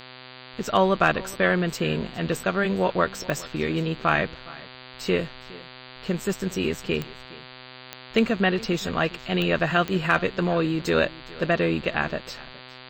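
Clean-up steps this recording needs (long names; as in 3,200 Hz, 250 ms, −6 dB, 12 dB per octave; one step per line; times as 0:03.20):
clipped peaks rebuilt −7.5 dBFS
click removal
hum removal 127.6 Hz, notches 37
echo removal 413 ms −20.5 dB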